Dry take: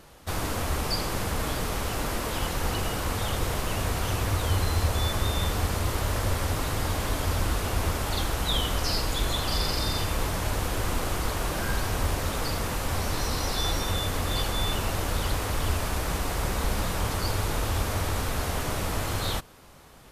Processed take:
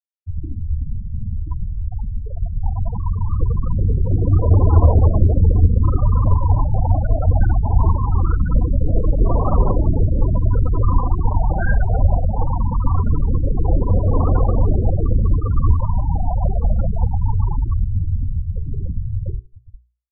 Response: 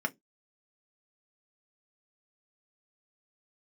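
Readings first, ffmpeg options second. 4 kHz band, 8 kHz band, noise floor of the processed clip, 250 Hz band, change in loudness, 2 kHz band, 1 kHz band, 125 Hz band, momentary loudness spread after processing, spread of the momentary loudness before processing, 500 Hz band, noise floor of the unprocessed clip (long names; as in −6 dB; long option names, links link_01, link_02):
below −40 dB, below −40 dB, −31 dBFS, +7.5 dB, +9.0 dB, −6.5 dB, +2.5 dB, +13.0 dB, 12 LU, 3 LU, +4.5 dB, −32 dBFS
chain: -af "dynaudnorm=framelen=480:gausssize=13:maxgain=5.5dB,aeval=exprs='val(0)+0.00562*sin(2*PI*1000*n/s)':channel_layout=same,lowpass=frequency=2100:width=0.5412,lowpass=frequency=2100:width=1.3066,aecho=1:1:399|798|1197|1596:0.316|0.101|0.0324|0.0104,aphaser=in_gain=1:out_gain=1:delay=1.5:decay=0.27:speed=0.21:type=triangular,afftfilt=real='re*gte(hypot(re,im),0.2)':imag='im*gte(hypot(re,im),0.2)':win_size=1024:overlap=0.75,bandreject=frequency=60:width_type=h:width=6,bandreject=frequency=120:width_type=h:width=6,bandreject=frequency=180:width_type=h:width=6,bandreject=frequency=240:width_type=h:width=6,bandreject=frequency=300:width_type=h:width=6,bandreject=frequency=360:width_type=h:width=6,bandreject=frequency=420:width_type=h:width=6,volume=6dB"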